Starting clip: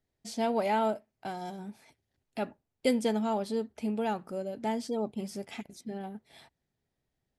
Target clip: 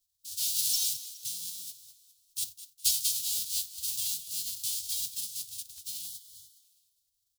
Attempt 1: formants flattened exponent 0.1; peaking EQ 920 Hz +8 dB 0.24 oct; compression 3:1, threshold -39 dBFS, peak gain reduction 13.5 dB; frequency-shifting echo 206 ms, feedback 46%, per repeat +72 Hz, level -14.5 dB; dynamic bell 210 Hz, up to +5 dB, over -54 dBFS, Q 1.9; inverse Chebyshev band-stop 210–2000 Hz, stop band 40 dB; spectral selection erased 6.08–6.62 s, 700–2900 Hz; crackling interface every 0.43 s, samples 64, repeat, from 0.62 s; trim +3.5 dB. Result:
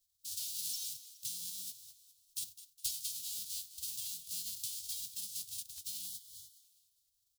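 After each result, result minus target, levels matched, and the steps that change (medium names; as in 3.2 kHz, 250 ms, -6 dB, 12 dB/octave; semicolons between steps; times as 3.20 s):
compression: peak gain reduction +13.5 dB; 250 Hz band +6.0 dB
remove: compression 3:1, threshold -39 dBFS, peak gain reduction 13.5 dB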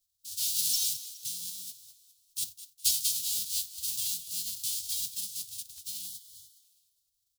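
250 Hz band +4.0 dB
change: dynamic bell 640 Hz, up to +5 dB, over -54 dBFS, Q 1.9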